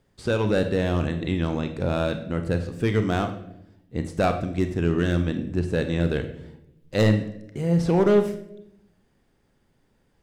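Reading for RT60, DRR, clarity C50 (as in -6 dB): 0.80 s, 7.0 dB, 10.0 dB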